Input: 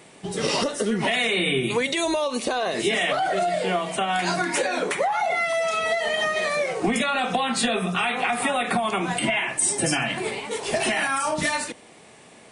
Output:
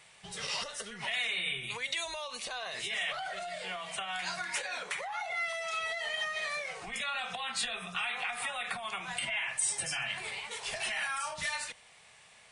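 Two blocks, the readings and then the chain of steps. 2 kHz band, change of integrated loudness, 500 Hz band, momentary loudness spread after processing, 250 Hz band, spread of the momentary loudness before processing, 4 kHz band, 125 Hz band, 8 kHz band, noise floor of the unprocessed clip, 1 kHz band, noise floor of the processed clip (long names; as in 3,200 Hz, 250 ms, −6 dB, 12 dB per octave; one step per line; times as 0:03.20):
−8.5 dB, −11.0 dB, −19.5 dB, 7 LU, −26.5 dB, 4 LU, −7.5 dB, −19.5 dB, −9.0 dB, −49 dBFS, −14.0 dB, −58 dBFS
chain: high-shelf EQ 5,900 Hz −10.5 dB
downward compressor, threshold −24 dBFS, peak gain reduction 6 dB
guitar amp tone stack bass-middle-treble 10-0-10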